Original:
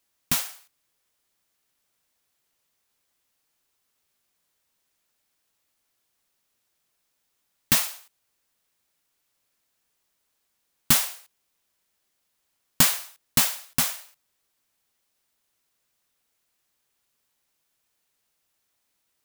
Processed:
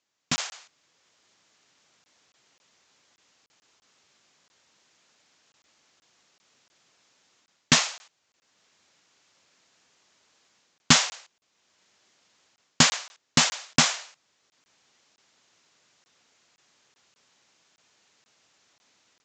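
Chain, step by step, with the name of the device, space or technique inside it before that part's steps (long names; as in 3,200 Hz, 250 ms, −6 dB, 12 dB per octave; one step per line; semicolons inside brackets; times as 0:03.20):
call with lost packets (high-pass filter 120 Hz 12 dB per octave; downsampling to 16,000 Hz; automatic gain control gain up to 15 dB; dropped packets)
level −1 dB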